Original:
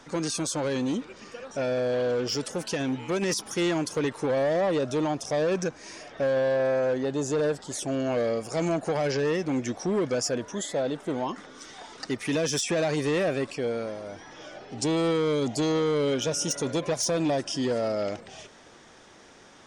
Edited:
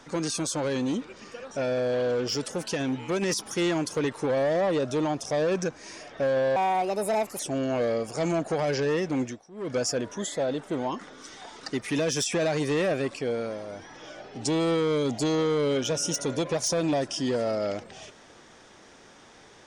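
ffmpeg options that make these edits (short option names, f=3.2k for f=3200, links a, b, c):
-filter_complex "[0:a]asplit=4[a][b][c][d];[a]atrim=end=6.564[e];[b]atrim=start=6.56:end=7.76,asetpts=PTS-STARTPTS,asetrate=63504,aresample=44100[f];[c]atrim=start=7.756:end=9.85,asetpts=PTS-STARTPTS,afade=t=out:st=1.844:d=0.25:c=qua:silence=0.0707946[g];[d]atrim=start=9.85,asetpts=PTS-STARTPTS,afade=t=in:d=0.25:c=qua:silence=0.0707946[h];[e][f]acrossfade=d=0.004:c1=hsin:c2=hsin[i];[g][h]concat=n=2:v=0:a=1[j];[i][j]acrossfade=d=0.004:c1=hsin:c2=hsin"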